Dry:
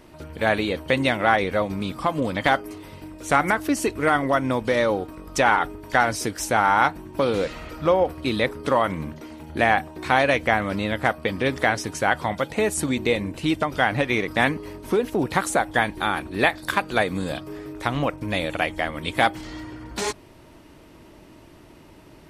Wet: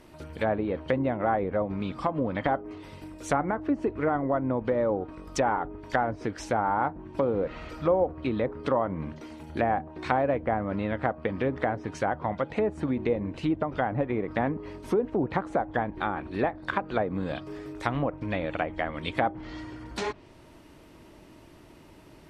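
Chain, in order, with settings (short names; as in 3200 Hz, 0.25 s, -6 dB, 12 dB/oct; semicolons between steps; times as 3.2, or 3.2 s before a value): treble ducked by the level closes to 850 Hz, closed at -18.5 dBFS; gain -3.5 dB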